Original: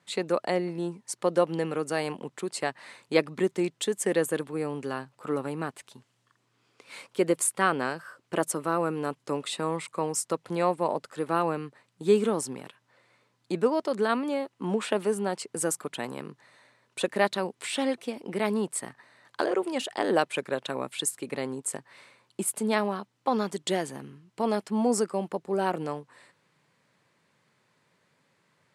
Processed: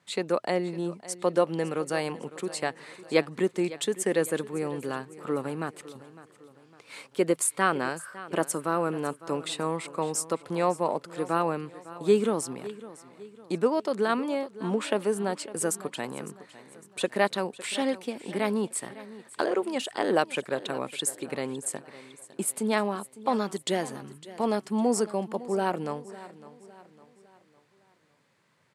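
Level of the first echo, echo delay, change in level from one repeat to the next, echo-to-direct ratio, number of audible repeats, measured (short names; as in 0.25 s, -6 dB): -17.0 dB, 0.556 s, -7.0 dB, -16.0 dB, 3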